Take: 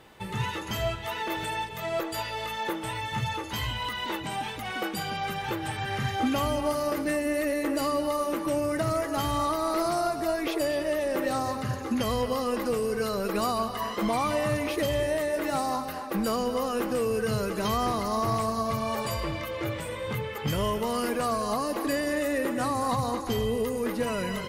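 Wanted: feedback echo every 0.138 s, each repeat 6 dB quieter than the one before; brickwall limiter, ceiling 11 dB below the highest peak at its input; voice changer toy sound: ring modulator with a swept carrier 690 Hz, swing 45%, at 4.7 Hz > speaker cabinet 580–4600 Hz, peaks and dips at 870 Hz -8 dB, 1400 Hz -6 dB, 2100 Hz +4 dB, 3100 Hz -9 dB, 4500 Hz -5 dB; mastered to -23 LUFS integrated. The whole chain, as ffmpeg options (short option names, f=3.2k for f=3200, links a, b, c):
-af "alimiter=level_in=5.5dB:limit=-24dB:level=0:latency=1,volume=-5.5dB,aecho=1:1:138|276|414|552|690|828:0.501|0.251|0.125|0.0626|0.0313|0.0157,aeval=exprs='val(0)*sin(2*PI*690*n/s+690*0.45/4.7*sin(2*PI*4.7*n/s))':c=same,highpass=580,equalizer=f=870:t=q:w=4:g=-8,equalizer=f=1.4k:t=q:w=4:g=-6,equalizer=f=2.1k:t=q:w=4:g=4,equalizer=f=3.1k:t=q:w=4:g=-9,equalizer=f=4.5k:t=q:w=4:g=-5,lowpass=f=4.6k:w=0.5412,lowpass=f=4.6k:w=1.3066,volume=19.5dB"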